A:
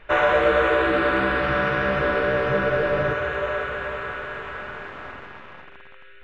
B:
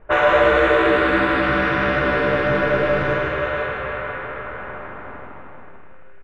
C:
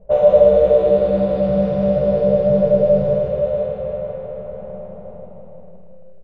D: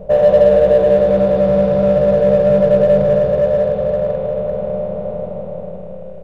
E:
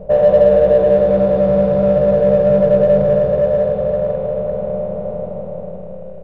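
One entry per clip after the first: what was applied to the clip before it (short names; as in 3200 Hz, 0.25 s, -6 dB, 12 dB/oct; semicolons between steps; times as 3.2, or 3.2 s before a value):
low-pass opened by the level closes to 870 Hz, open at -17 dBFS; feedback echo 0.155 s, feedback 52%, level -4.5 dB; gain +2.5 dB
EQ curve 130 Hz 0 dB, 190 Hz +12 dB, 290 Hz -19 dB, 550 Hz +10 dB, 980 Hz -16 dB, 1600 Hz -29 dB, 4700 Hz -8 dB, 7400 Hz -13 dB
per-bin compression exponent 0.6; in parallel at -9 dB: hard clip -15.5 dBFS, distortion -7 dB; on the sum: gain -1.5 dB
high shelf 2700 Hz -8 dB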